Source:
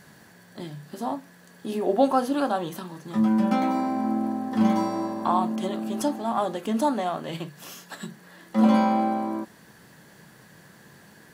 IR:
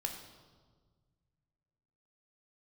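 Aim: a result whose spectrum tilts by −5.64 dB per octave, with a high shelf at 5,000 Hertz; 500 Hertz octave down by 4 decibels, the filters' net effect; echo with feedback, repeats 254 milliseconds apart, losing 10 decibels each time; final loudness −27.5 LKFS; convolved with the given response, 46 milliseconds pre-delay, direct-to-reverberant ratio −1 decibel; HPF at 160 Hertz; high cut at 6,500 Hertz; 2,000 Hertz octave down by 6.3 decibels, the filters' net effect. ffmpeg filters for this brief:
-filter_complex "[0:a]highpass=160,lowpass=6500,equalizer=frequency=500:width_type=o:gain=-4.5,equalizer=frequency=2000:width_type=o:gain=-9,highshelf=frequency=5000:gain=5,aecho=1:1:254|508|762|1016:0.316|0.101|0.0324|0.0104,asplit=2[link_01][link_02];[1:a]atrim=start_sample=2205,adelay=46[link_03];[link_02][link_03]afir=irnorm=-1:irlink=0,volume=0.5dB[link_04];[link_01][link_04]amix=inputs=2:normalize=0,volume=-3.5dB"

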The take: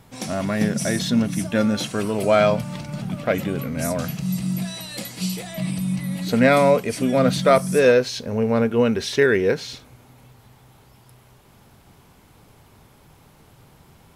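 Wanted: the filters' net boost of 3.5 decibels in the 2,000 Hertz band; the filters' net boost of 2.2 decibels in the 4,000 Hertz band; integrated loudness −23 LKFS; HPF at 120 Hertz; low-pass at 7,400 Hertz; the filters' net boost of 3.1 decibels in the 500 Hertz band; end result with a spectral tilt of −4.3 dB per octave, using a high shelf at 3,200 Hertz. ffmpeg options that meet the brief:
ffmpeg -i in.wav -af "highpass=120,lowpass=7400,equalizer=frequency=500:width_type=o:gain=3.5,equalizer=frequency=2000:width_type=o:gain=4.5,highshelf=frequency=3200:gain=-4,equalizer=frequency=4000:width_type=o:gain=4.5,volume=-4dB" out.wav

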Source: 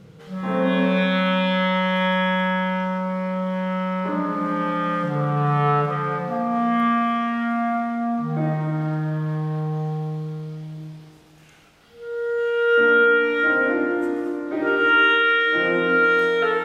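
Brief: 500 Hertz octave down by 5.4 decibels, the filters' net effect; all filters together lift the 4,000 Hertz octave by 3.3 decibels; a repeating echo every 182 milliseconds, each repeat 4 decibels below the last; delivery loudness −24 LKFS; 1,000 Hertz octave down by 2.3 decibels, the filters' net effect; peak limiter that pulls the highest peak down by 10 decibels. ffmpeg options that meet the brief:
ffmpeg -i in.wav -af "equalizer=frequency=500:width_type=o:gain=-5.5,equalizer=frequency=1000:width_type=o:gain=-3,equalizer=frequency=4000:width_type=o:gain=5,alimiter=limit=-18.5dB:level=0:latency=1,aecho=1:1:182|364|546|728|910|1092|1274|1456|1638:0.631|0.398|0.25|0.158|0.0994|0.0626|0.0394|0.0249|0.0157" out.wav

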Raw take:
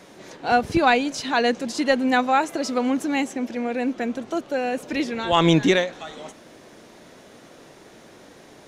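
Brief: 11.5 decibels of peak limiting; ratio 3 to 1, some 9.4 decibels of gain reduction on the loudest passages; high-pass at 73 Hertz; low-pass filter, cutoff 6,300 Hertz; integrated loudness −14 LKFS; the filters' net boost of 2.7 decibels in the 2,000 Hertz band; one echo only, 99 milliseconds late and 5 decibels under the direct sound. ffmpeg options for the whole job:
ffmpeg -i in.wav -af "highpass=73,lowpass=6300,equalizer=frequency=2000:width_type=o:gain=3.5,acompressor=threshold=-25dB:ratio=3,alimiter=level_in=0.5dB:limit=-24dB:level=0:latency=1,volume=-0.5dB,aecho=1:1:99:0.562,volume=18.5dB" out.wav

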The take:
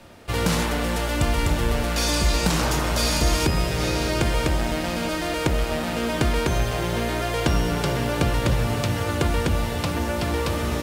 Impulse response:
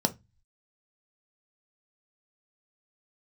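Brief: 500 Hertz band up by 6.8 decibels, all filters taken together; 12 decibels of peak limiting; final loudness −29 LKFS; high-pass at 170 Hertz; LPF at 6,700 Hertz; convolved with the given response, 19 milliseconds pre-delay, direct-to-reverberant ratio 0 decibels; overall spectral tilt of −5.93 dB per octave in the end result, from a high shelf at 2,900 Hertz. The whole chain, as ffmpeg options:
-filter_complex "[0:a]highpass=170,lowpass=6700,equalizer=frequency=500:width_type=o:gain=8.5,highshelf=frequency=2900:gain=-7,alimiter=limit=-15.5dB:level=0:latency=1,asplit=2[link_01][link_02];[1:a]atrim=start_sample=2205,adelay=19[link_03];[link_02][link_03]afir=irnorm=-1:irlink=0,volume=-8.5dB[link_04];[link_01][link_04]amix=inputs=2:normalize=0,volume=-10.5dB"

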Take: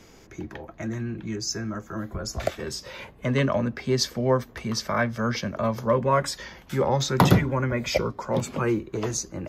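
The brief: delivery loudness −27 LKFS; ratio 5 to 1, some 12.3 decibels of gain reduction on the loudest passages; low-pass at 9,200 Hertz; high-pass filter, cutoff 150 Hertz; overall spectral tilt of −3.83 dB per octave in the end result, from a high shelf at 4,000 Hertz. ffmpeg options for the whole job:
ffmpeg -i in.wav -af "highpass=150,lowpass=9200,highshelf=frequency=4000:gain=5.5,acompressor=threshold=-29dB:ratio=5,volume=6.5dB" out.wav

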